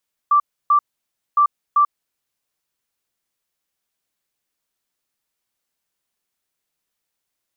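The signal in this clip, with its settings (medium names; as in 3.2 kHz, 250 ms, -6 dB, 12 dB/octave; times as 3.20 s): beep pattern sine 1.17 kHz, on 0.09 s, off 0.30 s, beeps 2, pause 0.58 s, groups 2, -10.5 dBFS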